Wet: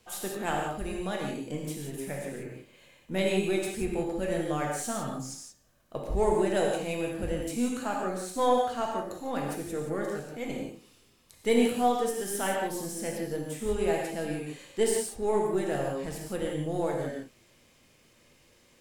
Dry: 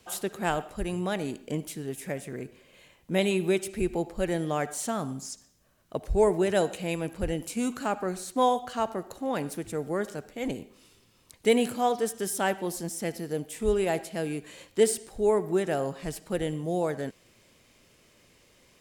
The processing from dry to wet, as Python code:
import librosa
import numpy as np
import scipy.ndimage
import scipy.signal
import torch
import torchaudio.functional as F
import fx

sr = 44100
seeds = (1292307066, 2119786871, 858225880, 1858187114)

y = np.where(x < 0.0, 10.0 ** (-3.0 / 20.0) * x, x)
y = fx.rev_gated(y, sr, seeds[0], gate_ms=200, shape='flat', drr_db=-1.5)
y = F.gain(torch.from_numpy(y), -3.5).numpy()